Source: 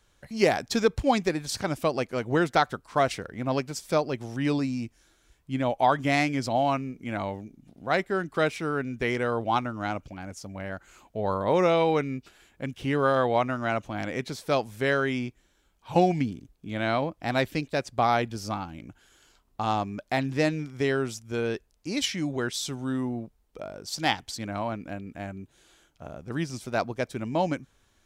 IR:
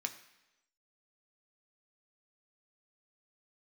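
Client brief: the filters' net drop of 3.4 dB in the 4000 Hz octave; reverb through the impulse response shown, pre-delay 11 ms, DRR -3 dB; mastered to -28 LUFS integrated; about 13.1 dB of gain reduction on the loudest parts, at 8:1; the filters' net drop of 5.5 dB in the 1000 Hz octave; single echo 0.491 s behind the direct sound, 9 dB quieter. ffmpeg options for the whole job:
-filter_complex "[0:a]equalizer=f=1k:t=o:g=-8,equalizer=f=4k:t=o:g=-4,acompressor=threshold=-31dB:ratio=8,aecho=1:1:491:0.355,asplit=2[a][b];[1:a]atrim=start_sample=2205,adelay=11[c];[b][c]afir=irnorm=-1:irlink=0,volume=2.5dB[d];[a][d]amix=inputs=2:normalize=0,volume=5dB"

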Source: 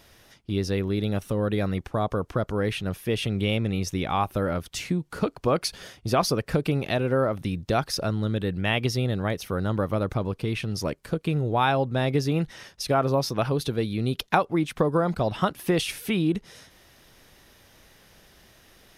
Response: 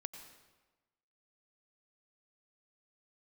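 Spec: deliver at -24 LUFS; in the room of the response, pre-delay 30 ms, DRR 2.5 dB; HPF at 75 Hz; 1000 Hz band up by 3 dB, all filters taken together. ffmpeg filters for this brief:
-filter_complex "[0:a]highpass=75,equalizer=f=1k:t=o:g=4,asplit=2[a][b];[1:a]atrim=start_sample=2205,adelay=30[c];[b][c]afir=irnorm=-1:irlink=0,volume=0.5dB[d];[a][d]amix=inputs=2:normalize=0,volume=-0.5dB"

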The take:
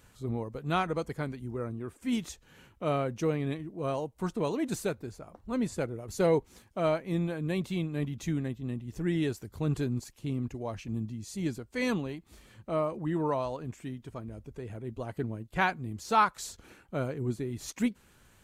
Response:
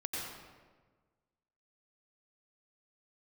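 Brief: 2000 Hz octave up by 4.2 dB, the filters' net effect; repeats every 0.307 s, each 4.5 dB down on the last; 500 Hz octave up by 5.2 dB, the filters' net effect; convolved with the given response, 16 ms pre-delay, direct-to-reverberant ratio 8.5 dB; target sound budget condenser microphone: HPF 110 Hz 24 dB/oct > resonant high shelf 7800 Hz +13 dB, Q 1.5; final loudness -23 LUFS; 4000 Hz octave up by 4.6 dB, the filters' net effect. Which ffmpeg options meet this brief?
-filter_complex "[0:a]equalizer=f=500:t=o:g=6,equalizer=f=2k:t=o:g=4.5,equalizer=f=4k:t=o:g=6.5,aecho=1:1:307|614|921|1228|1535|1842|2149|2456|2763:0.596|0.357|0.214|0.129|0.0772|0.0463|0.0278|0.0167|0.01,asplit=2[a][b];[1:a]atrim=start_sample=2205,adelay=16[c];[b][c]afir=irnorm=-1:irlink=0,volume=-11.5dB[d];[a][d]amix=inputs=2:normalize=0,highpass=f=110:w=0.5412,highpass=f=110:w=1.3066,highshelf=f=7.8k:t=q:w=1.5:g=13,volume=4.5dB"

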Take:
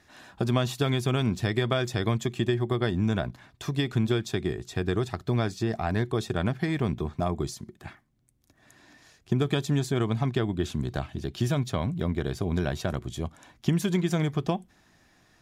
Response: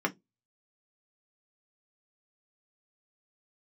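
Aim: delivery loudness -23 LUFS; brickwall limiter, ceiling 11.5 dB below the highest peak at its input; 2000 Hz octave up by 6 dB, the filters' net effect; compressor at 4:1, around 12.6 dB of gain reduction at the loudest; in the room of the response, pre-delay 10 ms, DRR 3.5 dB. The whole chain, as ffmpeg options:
-filter_complex "[0:a]equalizer=f=2k:t=o:g=7.5,acompressor=threshold=-38dB:ratio=4,alimiter=level_in=8.5dB:limit=-24dB:level=0:latency=1,volume=-8.5dB,asplit=2[a][b];[1:a]atrim=start_sample=2205,adelay=10[c];[b][c]afir=irnorm=-1:irlink=0,volume=-12dB[d];[a][d]amix=inputs=2:normalize=0,volume=19dB"

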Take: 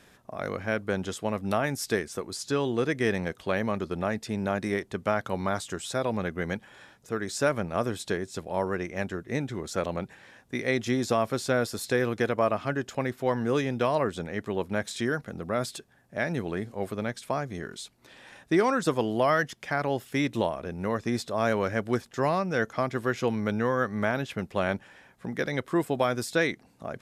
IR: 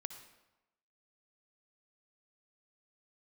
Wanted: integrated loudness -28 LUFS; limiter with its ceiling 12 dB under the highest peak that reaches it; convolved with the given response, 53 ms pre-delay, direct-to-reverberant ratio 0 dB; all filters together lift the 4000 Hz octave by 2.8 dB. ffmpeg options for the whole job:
-filter_complex "[0:a]equalizer=f=4k:t=o:g=3.5,alimiter=limit=-23.5dB:level=0:latency=1,asplit=2[a][b];[1:a]atrim=start_sample=2205,adelay=53[c];[b][c]afir=irnorm=-1:irlink=0,volume=2.5dB[d];[a][d]amix=inputs=2:normalize=0,volume=4dB"

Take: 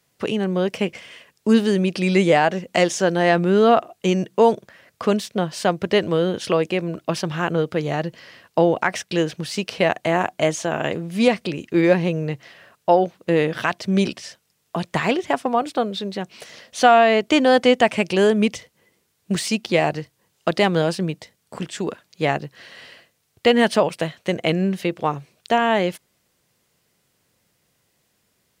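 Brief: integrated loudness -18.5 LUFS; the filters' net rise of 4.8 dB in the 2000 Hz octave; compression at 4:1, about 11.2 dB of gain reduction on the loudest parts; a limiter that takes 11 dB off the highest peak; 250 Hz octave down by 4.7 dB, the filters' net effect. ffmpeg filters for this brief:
-af "equalizer=f=250:t=o:g=-7,equalizer=f=2k:t=o:g=6,acompressor=threshold=-22dB:ratio=4,volume=10dB,alimiter=limit=-5dB:level=0:latency=1"

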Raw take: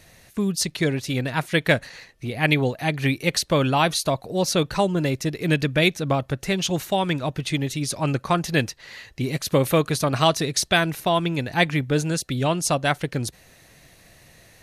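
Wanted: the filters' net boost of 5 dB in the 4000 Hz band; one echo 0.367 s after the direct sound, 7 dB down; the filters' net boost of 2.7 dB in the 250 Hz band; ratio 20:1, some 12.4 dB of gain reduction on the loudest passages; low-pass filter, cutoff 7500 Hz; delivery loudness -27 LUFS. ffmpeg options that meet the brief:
-af "lowpass=7.5k,equalizer=f=250:t=o:g=4,equalizer=f=4k:t=o:g=6.5,acompressor=threshold=-24dB:ratio=20,aecho=1:1:367:0.447,volume=1.5dB"

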